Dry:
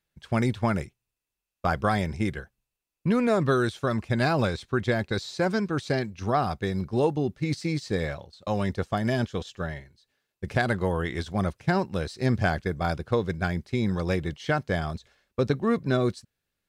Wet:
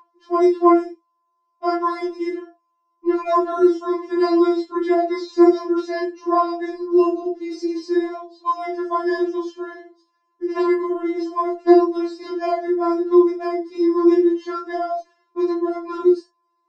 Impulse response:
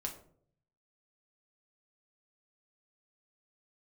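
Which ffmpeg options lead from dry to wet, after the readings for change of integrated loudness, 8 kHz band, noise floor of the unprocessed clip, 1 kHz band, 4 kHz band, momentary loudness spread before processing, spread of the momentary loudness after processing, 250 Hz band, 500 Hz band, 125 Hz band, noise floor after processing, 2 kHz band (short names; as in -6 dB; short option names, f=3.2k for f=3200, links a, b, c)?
+7.5 dB, n/a, under -85 dBFS, +7.5 dB, -2.5 dB, 7 LU, 12 LU, +9.5 dB, +8.5 dB, under -35 dB, -71 dBFS, -4.5 dB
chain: -filter_complex "[0:a]tiltshelf=f=1.1k:g=9,flanger=delay=16:depth=3.8:speed=0.27,aeval=exprs='val(0)+0.00562*sin(2*PI*940*n/s)':c=same,highpass=f=190:w=0.5412,highpass=f=190:w=1.3066,equalizer=f=400:t=q:w=4:g=5,equalizer=f=980:t=q:w=4:g=6,equalizer=f=5.3k:t=q:w=4:g=9,lowpass=f=8k:w=0.5412,lowpass=f=8k:w=1.3066[a];[1:a]atrim=start_sample=2205,afade=t=out:st=0.14:d=0.01,atrim=end_sample=6615[b];[a][b]afir=irnorm=-1:irlink=0,afftfilt=real='re*4*eq(mod(b,16),0)':imag='im*4*eq(mod(b,16),0)':win_size=2048:overlap=0.75,volume=8.5dB"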